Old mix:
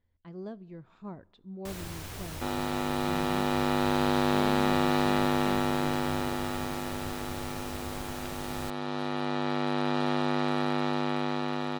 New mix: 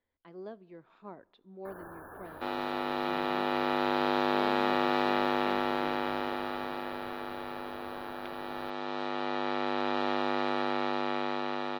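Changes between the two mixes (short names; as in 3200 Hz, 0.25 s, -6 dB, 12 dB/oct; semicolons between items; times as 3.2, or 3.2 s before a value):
first sound: add brick-wall FIR band-stop 1800–9800 Hz; master: add three-band isolator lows -18 dB, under 270 Hz, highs -15 dB, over 4800 Hz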